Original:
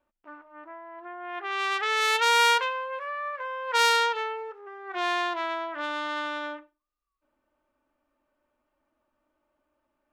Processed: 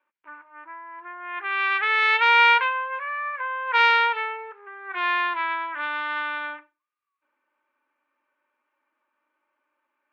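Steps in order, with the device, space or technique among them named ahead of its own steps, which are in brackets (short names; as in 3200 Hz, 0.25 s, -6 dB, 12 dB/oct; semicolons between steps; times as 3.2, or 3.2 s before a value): phone earpiece (speaker cabinet 430–3600 Hz, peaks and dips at 660 Hz -10 dB, 1000 Hz +6 dB, 1600 Hz +7 dB, 2300 Hz +9 dB)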